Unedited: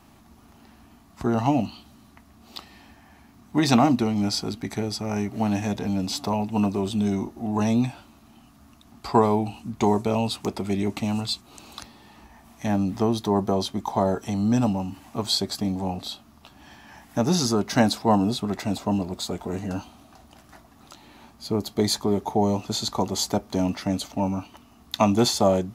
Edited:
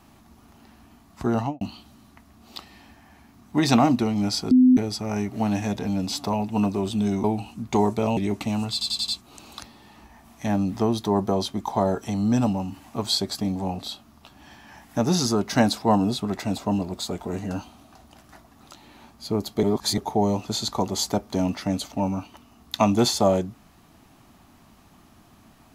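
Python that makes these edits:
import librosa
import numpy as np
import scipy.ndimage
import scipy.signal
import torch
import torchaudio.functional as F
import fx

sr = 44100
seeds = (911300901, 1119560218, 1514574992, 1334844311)

y = fx.studio_fade_out(x, sr, start_s=1.36, length_s=0.25)
y = fx.edit(y, sr, fx.bleep(start_s=4.51, length_s=0.26, hz=254.0, db=-11.0),
    fx.cut(start_s=7.24, length_s=2.08),
    fx.cut(start_s=10.25, length_s=0.48),
    fx.stutter(start_s=11.28, slice_s=0.09, count=5),
    fx.reverse_span(start_s=21.83, length_s=0.35), tone=tone)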